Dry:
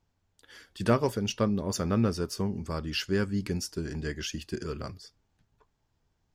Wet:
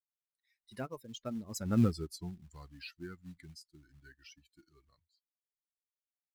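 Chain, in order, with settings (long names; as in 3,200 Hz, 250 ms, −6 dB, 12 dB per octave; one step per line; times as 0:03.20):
spectral dynamics exaggerated over time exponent 2
source passing by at 0:01.83, 37 m/s, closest 6.2 metres
in parallel at −6 dB: floating-point word with a short mantissa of 2 bits
on the sum: one half of a high-frequency compander encoder only
level −2 dB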